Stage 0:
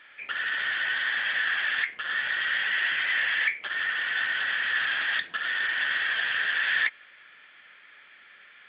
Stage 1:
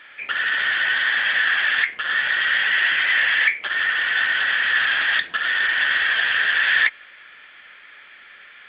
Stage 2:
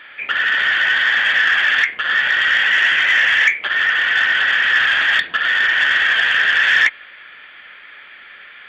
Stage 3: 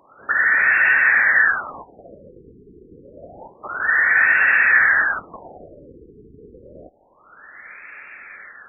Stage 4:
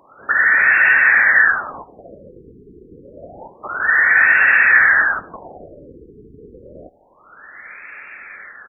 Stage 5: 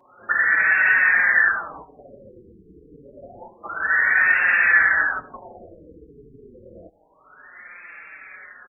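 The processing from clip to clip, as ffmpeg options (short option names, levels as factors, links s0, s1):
-af "asubboost=boost=3:cutoff=61,volume=2.37"
-af "acontrast=73,volume=0.841"
-af "afftfilt=real='re*lt(b*sr/1024,460*pow(2800/460,0.5+0.5*sin(2*PI*0.28*pts/sr)))':imag='im*lt(b*sr/1024,460*pow(2800/460,0.5+0.5*sin(2*PI*0.28*pts/sr)))':win_size=1024:overlap=0.75,volume=1.12"
-af "aecho=1:1:85|170:0.0708|0.0227,volume=1.41"
-filter_complex "[0:a]asplit=2[s0][s1];[s1]adelay=5,afreqshift=-0.94[s2];[s0][s2]amix=inputs=2:normalize=1,volume=0.794"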